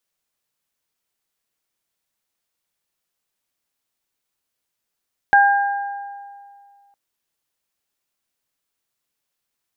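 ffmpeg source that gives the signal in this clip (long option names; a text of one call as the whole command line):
ffmpeg -f lavfi -i "aevalsrc='0.316*pow(10,-3*t/2.16)*sin(2*PI*804*t)+0.282*pow(10,-3*t/1.41)*sin(2*PI*1608*t)':duration=1.61:sample_rate=44100" out.wav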